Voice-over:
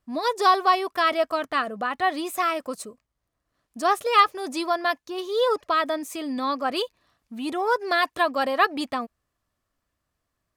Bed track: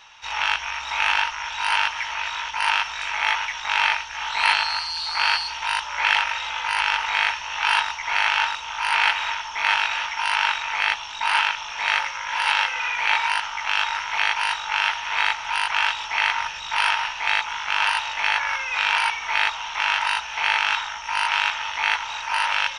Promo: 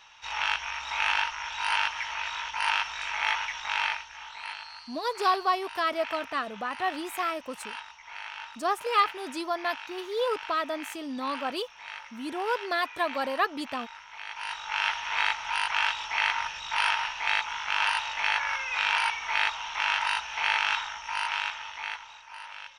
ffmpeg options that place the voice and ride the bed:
-filter_complex "[0:a]adelay=4800,volume=0.501[s0];[1:a]volume=2.82,afade=t=out:st=3.55:d=0.87:silence=0.199526,afade=t=in:st=14.25:d=0.66:silence=0.188365,afade=t=out:st=20.75:d=1.5:silence=0.16788[s1];[s0][s1]amix=inputs=2:normalize=0"

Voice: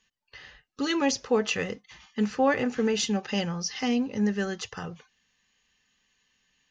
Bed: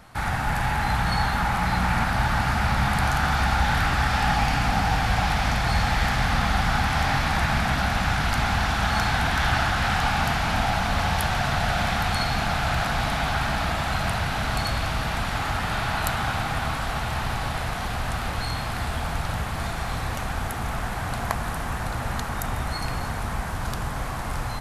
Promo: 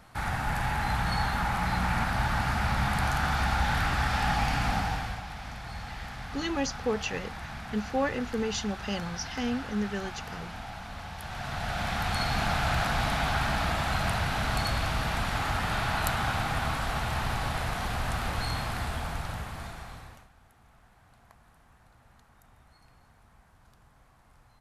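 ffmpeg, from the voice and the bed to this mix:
-filter_complex "[0:a]adelay=5550,volume=0.562[s0];[1:a]volume=2.82,afade=t=out:st=4.71:d=0.51:silence=0.251189,afade=t=in:st=11.18:d=1.27:silence=0.199526,afade=t=out:st=18.56:d=1.73:silence=0.0398107[s1];[s0][s1]amix=inputs=2:normalize=0"

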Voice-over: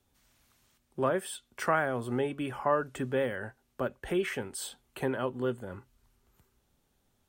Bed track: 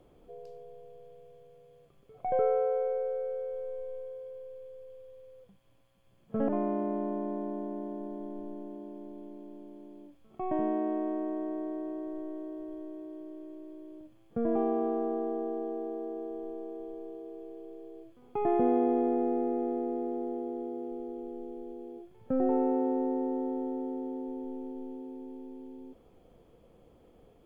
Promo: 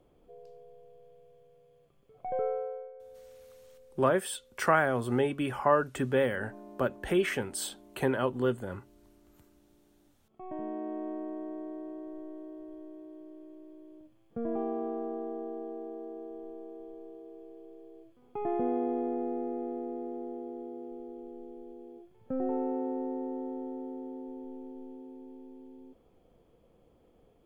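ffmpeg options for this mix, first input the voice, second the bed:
-filter_complex "[0:a]adelay=3000,volume=1.41[s0];[1:a]volume=2.82,afade=t=out:st=2.46:d=0.46:silence=0.211349,afade=t=in:st=9.98:d=1.11:silence=0.211349[s1];[s0][s1]amix=inputs=2:normalize=0"

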